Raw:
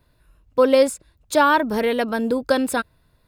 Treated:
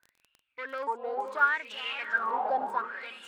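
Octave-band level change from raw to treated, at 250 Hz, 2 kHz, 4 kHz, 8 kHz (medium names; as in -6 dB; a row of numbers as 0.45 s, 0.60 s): -27.5 dB, -4.0 dB, -9.0 dB, under -25 dB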